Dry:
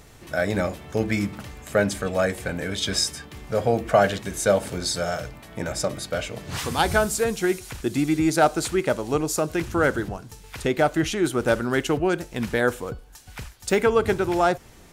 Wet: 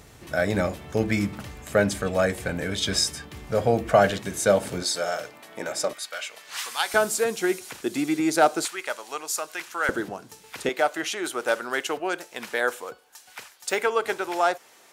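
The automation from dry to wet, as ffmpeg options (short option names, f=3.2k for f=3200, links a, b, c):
-af "asetnsamples=n=441:p=0,asendcmd='4.1 highpass f 100;4.83 highpass f 350;5.93 highpass f 1200;6.94 highpass f 290;8.65 highpass f 1000;9.89 highpass f 250;10.69 highpass f 570',highpass=43"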